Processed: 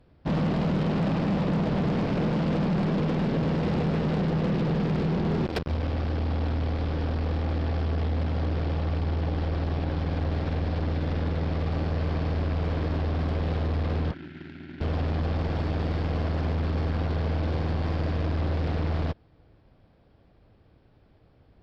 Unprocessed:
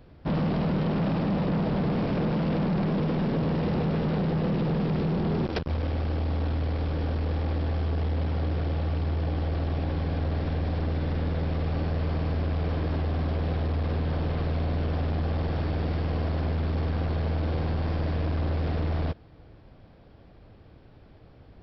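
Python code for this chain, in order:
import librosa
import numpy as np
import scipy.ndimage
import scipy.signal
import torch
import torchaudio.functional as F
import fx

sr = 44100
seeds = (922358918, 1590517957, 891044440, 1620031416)

y = fx.bandpass_edges(x, sr, low_hz=230.0, high_hz=2700.0, at=(14.11, 14.81))
y = fx.spec_box(y, sr, start_s=14.13, length_s=0.68, low_hz=400.0, high_hz=1300.0, gain_db=-26)
y = fx.cheby_harmonics(y, sr, harmonics=(7,), levels_db=(-22,), full_scale_db=-19.0)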